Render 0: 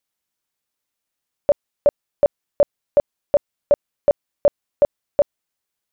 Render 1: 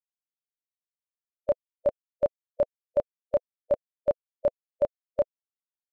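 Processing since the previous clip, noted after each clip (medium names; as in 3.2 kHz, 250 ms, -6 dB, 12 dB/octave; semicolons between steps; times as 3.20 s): expander on every frequency bin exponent 3; trim -6 dB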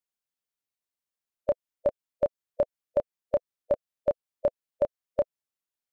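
compression, threshold -24 dBFS, peak gain reduction 5.5 dB; trim +3 dB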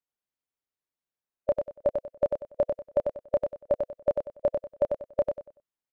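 on a send: feedback delay 95 ms, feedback 28%, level -5 dB; on the sum: tape noise reduction on one side only decoder only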